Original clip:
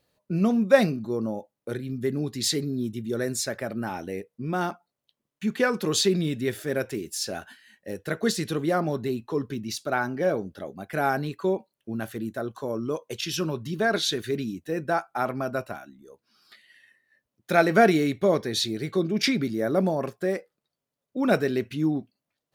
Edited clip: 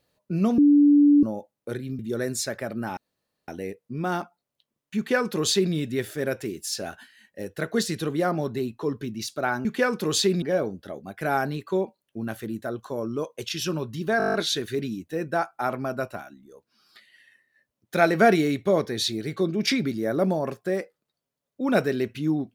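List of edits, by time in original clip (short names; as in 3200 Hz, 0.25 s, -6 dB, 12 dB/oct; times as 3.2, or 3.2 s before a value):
0.58–1.23 bleep 290 Hz -12.5 dBFS
1.99–2.99 cut
3.97 insert room tone 0.51 s
5.46–6.23 copy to 10.14
13.9 stutter 0.02 s, 9 plays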